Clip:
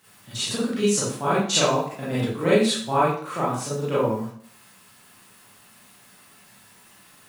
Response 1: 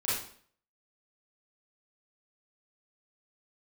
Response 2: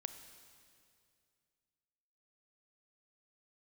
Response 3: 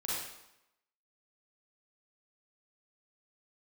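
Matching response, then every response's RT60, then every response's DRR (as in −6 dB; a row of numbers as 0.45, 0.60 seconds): 1; 0.55, 2.4, 0.85 seconds; −10.0, 9.0, −7.5 decibels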